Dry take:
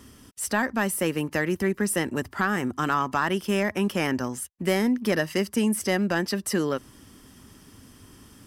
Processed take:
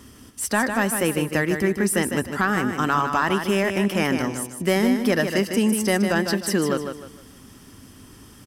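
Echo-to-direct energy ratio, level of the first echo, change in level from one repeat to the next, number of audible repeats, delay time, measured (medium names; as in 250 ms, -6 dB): -6.5 dB, -7.0 dB, -10.0 dB, 3, 153 ms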